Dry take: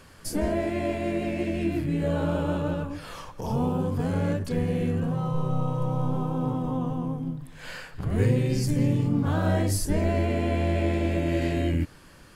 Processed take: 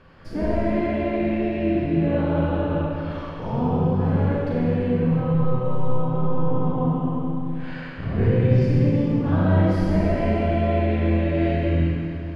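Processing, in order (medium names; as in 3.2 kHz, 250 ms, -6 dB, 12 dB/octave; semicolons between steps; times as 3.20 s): distance through air 320 m; Schroeder reverb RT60 2.5 s, combs from 33 ms, DRR -4.5 dB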